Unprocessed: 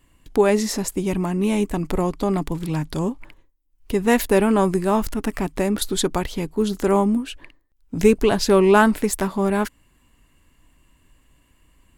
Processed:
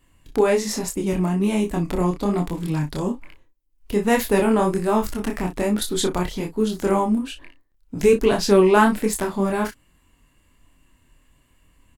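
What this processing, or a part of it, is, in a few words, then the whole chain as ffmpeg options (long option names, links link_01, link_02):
double-tracked vocal: -filter_complex "[0:a]asplit=2[link_01][link_02];[link_02]adelay=34,volume=-10dB[link_03];[link_01][link_03]amix=inputs=2:normalize=0,flanger=delay=22.5:depth=5:speed=1.2,volume=2dB"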